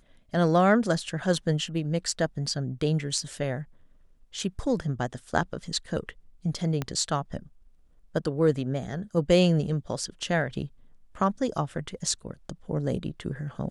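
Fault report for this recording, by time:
0:06.82: click −15 dBFS

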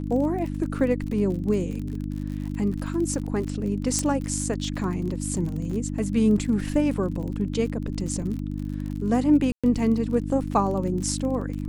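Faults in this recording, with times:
surface crackle 42 per second −32 dBFS
mains hum 50 Hz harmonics 6 −30 dBFS
0:03.99: click −11 dBFS
0:05.71: drop-out 4.1 ms
0:08.22: drop-out 2.5 ms
0:09.52–0:09.64: drop-out 116 ms

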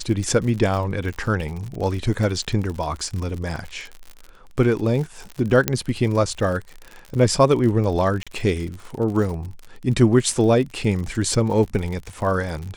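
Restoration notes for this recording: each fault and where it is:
surface crackle 54 per second −28 dBFS
0:05.68: click −2 dBFS
0:08.23–0:08.27: drop-out 36 ms

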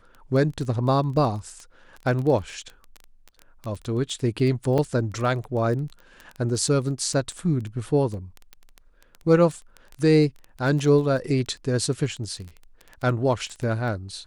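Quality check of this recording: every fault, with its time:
surface crackle 13 per second −29 dBFS
0:04.78: drop-out 4.4 ms

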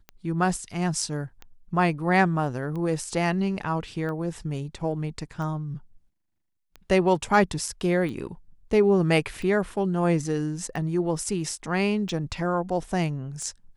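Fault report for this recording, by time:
scratch tick 45 rpm −25 dBFS

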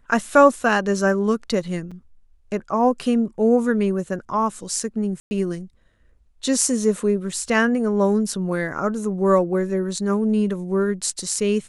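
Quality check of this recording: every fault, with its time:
0:01.91–0:01.92: drop-out 5.4 ms
0:05.20–0:05.31: drop-out 110 ms

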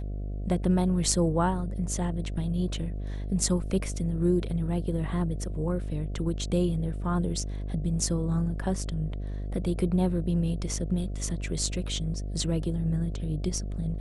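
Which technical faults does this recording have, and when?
mains buzz 50 Hz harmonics 14 −33 dBFS

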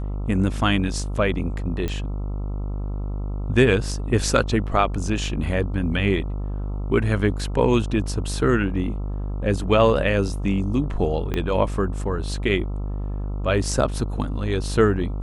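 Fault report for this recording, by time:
mains buzz 50 Hz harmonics 27 −27 dBFS
0:01.88: click −15 dBFS
0:11.34: click −13 dBFS

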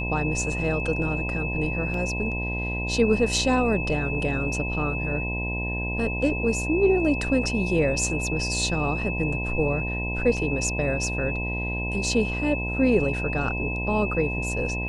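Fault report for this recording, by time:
mains buzz 60 Hz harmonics 17 −30 dBFS
whistle 2,600 Hz −30 dBFS
0:01.94: drop-out 2.4 ms
0:10.37: drop-out 4.3 ms

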